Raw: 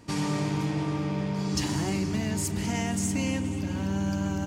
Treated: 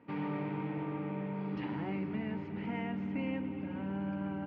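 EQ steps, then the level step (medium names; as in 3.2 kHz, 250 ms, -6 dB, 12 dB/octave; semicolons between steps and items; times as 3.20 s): distance through air 160 m; cabinet simulation 240–2300 Hz, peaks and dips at 350 Hz -7 dB, 660 Hz -7 dB, 1.1 kHz -6 dB, 1.7 kHz -6 dB; -2.0 dB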